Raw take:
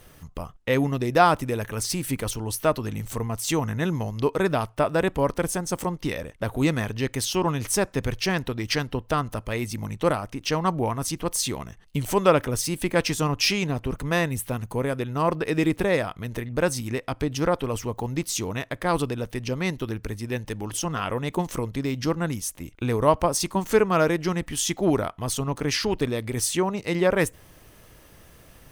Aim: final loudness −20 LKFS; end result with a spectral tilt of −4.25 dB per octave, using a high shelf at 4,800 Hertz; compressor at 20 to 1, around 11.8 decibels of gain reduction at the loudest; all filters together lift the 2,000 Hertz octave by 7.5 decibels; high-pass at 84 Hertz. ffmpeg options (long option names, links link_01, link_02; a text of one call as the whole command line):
ffmpeg -i in.wav -af "highpass=84,equalizer=frequency=2000:width_type=o:gain=8.5,highshelf=frequency=4800:gain=5,acompressor=threshold=-22dB:ratio=20,volume=8dB" out.wav